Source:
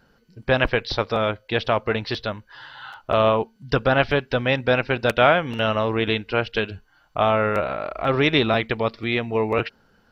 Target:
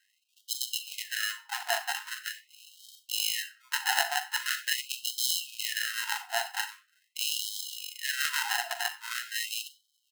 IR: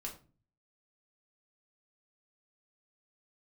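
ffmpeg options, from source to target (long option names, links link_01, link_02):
-filter_complex "[0:a]lowshelf=frequency=270:gain=-10,acrusher=samples=38:mix=1:aa=0.000001,asplit=2[link_01][link_02];[link_02]adelay=93,lowpass=frequency=3700:poles=1,volume=-20.5dB,asplit=2[link_03][link_04];[link_04]adelay=93,lowpass=frequency=3700:poles=1,volume=0.31[link_05];[link_01][link_03][link_05]amix=inputs=3:normalize=0,asplit=2[link_06][link_07];[1:a]atrim=start_sample=2205,adelay=41[link_08];[link_07][link_08]afir=irnorm=-1:irlink=0,volume=-7.5dB[link_09];[link_06][link_09]amix=inputs=2:normalize=0,afftfilt=real='re*gte(b*sr/1024,680*pow(3000/680,0.5+0.5*sin(2*PI*0.43*pts/sr)))':imag='im*gte(b*sr/1024,680*pow(3000/680,0.5+0.5*sin(2*PI*0.43*pts/sr)))':win_size=1024:overlap=0.75"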